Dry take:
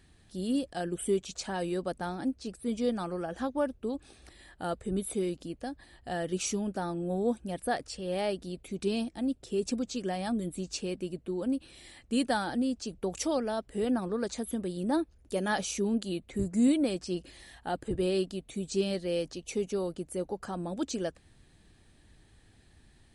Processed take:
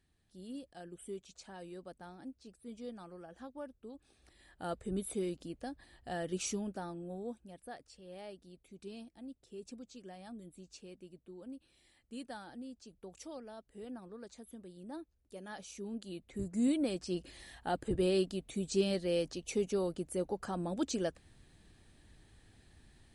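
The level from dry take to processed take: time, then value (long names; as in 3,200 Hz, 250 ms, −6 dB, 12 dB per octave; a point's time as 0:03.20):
0:03.95 −15.5 dB
0:04.72 −5 dB
0:06.53 −5 dB
0:07.59 −17 dB
0:15.51 −17 dB
0:16.38 −8 dB
0:17.40 −1.5 dB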